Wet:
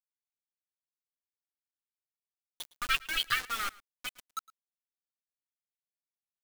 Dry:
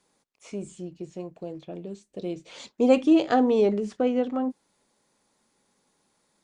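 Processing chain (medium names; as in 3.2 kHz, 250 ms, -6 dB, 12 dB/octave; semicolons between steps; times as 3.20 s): expander on every frequency bin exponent 3; hard clipper -24.5 dBFS, distortion -7 dB; peaking EQ 7.2 kHz -14.5 dB 0.38 oct; comb 5.9 ms, depth 38%; de-hum 141.4 Hz, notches 31; dynamic bell 3.2 kHz, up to +6 dB, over -54 dBFS, Q 1.1; FFT band-reject 140–1100 Hz; bit crusher 7-bit; delay 110 ms -22.5 dB; trim +6 dB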